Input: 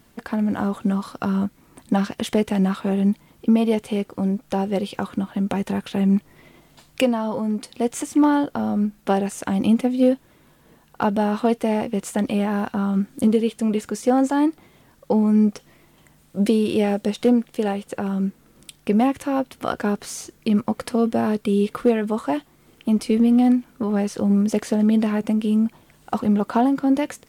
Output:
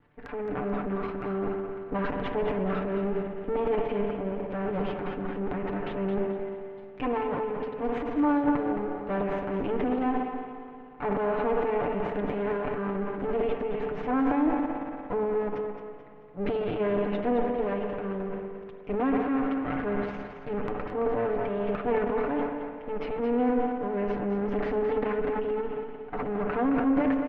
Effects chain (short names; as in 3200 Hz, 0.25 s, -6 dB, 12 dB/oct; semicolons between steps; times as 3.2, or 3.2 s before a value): minimum comb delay 6.8 ms; LPF 2400 Hz 24 dB/oct; spring tank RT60 2.9 s, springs 59 ms, chirp 50 ms, DRR 8.5 dB; transient shaper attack -4 dB, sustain +10 dB; feedback echo 0.218 s, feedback 36%, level -8 dB; gain -7 dB